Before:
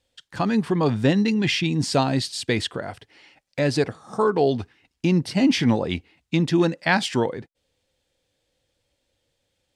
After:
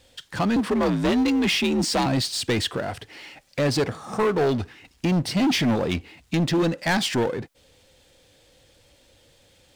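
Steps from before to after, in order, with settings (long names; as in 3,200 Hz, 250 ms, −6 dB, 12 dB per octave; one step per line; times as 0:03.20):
0:00.56–0:02.06: frequency shifter +53 Hz
gain into a clipping stage and back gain 17.5 dB
power curve on the samples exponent 0.7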